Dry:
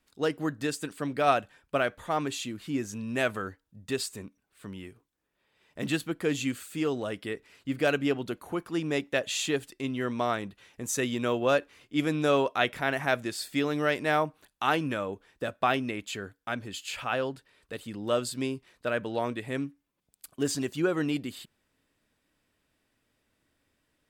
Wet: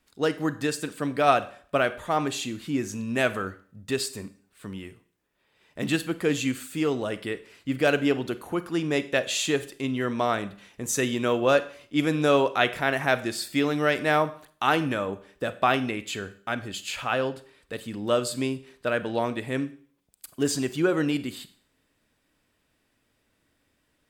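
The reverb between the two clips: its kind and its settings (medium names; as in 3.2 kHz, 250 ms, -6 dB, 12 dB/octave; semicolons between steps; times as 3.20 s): Schroeder reverb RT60 0.49 s, combs from 31 ms, DRR 13.5 dB; trim +3.5 dB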